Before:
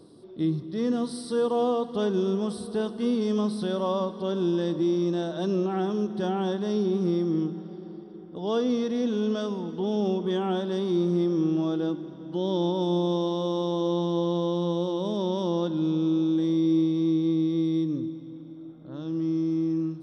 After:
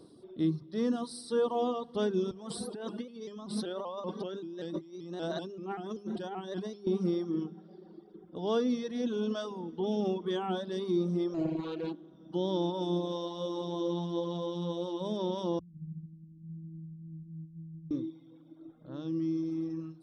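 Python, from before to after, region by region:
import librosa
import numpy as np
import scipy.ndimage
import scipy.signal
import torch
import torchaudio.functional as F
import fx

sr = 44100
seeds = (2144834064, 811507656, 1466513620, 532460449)

y = fx.chain(x, sr, fx.over_compress(threshold_db=-32.0, ratio=-1.0),
    fx.low_shelf(hz=75.0, db=-12.0),
    fx.vibrato_shape(shape='saw_up', rate_hz=5.2, depth_cents=100.0), at=(2.31, 6.87))
y = fx.chain(y, sr, fx.peak_eq(hz=5300.0, db=-7.5, octaves=0.22),
    fx.doppler_dist(depth_ms=0.39), at=(11.34, 12.14))
y = fx.chain(y, sr, fx.cheby2_lowpass(hz=630.0, order=4, stop_db=70),
    fx.comb(ms=0.9, depth=0.8), at=(15.59, 17.91))
y = fx.hum_notches(y, sr, base_hz=50, count=4)
y = fx.dereverb_blind(y, sr, rt60_s=1.7)
y = y * 10.0 ** (-2.5 / 20.0)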